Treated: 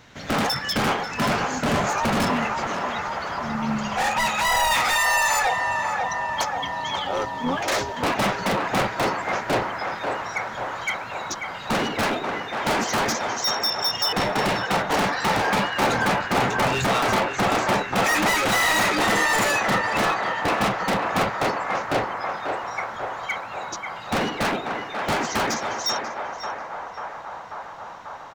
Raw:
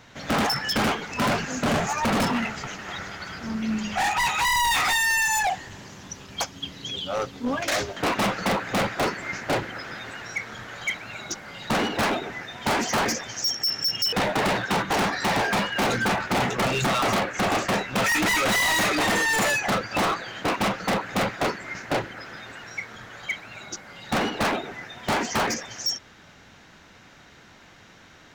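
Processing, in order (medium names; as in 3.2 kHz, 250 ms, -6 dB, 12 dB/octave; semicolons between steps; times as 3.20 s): band-passed feedback delay 540 ms, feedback 82%, band-pass 990 Hz, level -3 dB; harmony voices -7 st -10 dB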